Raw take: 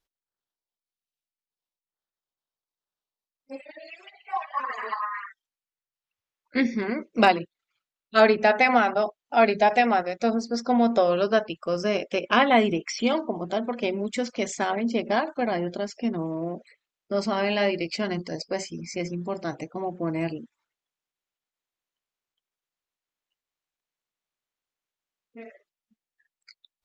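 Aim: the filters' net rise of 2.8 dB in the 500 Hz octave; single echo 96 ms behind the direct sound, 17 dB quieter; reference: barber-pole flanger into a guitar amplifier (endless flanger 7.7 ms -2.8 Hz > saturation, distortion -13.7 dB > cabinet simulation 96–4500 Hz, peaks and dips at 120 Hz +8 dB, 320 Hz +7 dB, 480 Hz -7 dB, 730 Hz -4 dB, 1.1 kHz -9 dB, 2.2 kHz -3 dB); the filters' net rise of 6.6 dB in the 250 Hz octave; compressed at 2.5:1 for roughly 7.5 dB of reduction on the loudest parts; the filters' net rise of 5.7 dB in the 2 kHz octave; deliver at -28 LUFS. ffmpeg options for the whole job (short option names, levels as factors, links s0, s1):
-filter_complex "[0:a]equalizer=f=250:t=o:g=4,equalizer=f=500:t=o:g=6,equalizer=f=2000:t=o:g=9,acompressor=threshold=0.112:ratio=2.5,aecho=1:1:96:0.141,asplit=2[s0][s1];[s1]adelay=7.7,afreqshift=-2.8[s2];[s0][s2]amix=inputs=2:normalize=1,asoftclip=threshold=0.106,highpass=96,equalizer=f=120:t=q:w=4:g=8,equalizer=f=320:t=q:w=4:g=7,equalizer=f=480:t=q:w=4:g=-7,equalizer=f=730:t=q:w=4:g=-4,equalizer=f=1100:t=q:w=4:g=-9,equalizer=f=2200:t=q:w=4:g=-3,lowpass=f=4500:w=0.5412,lowpass=f=4500:w=1.3066,volume=1.26"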